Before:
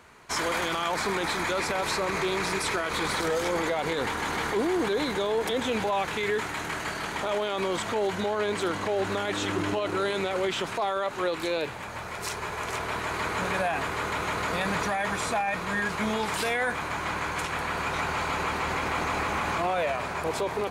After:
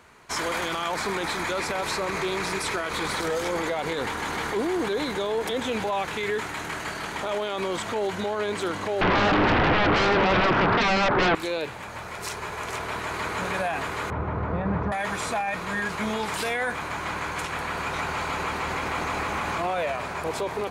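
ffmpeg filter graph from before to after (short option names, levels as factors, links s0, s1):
-filter_complex "[0:a]asettb=1/sr,asplit=3[s0][s1][s2];[s0]atrim=end=9.014[s3];[s1]atrim=start=9.01:end=11.35,asetpts=PTS-STARTPTS,afade=t=in:d=0.004:c=qsin,afade=t=out:st=2.336:d=0.004:c=qsin,lowpass=f=1800:w=0.5412,lowpass=f=1800:w=1.3066,aeval=exprs='0.141*sin(PI/2*5.62*val(0)/0.141)':c=same,aemphasis=mode=reproduction:type=75fm[s4];[s2]atrim=start=11.346[s5];[s3][s4]acrossfade=d=0.004:c1=hsin:c2=qsin[s6];[s6][s5]acrossfade=d=0.004:c1=qsin:c2=hsin,asettb=1/sr,asplit=3[s7][s8][s9];[s7]atrim=end=14.104[s10];[s8]atrim=start=14.1:end=14.92,asetpts=PTS-STARTPTS,afade=t=in:d=0.004:c=qsin,afade=t=out:st=0.816:d=0.004:c=qsin,lowpass=1100,equalizer=f=85:t=o:w=2.2:g=12[s11];[s9]atrim=start=14.916[s12];[s10][s11]acrossfade=d=0.004:c1=hsin:c2=qsin[s13];[s13][s12]acrossfade=d=0.004:c1=qsin:c2=hsin"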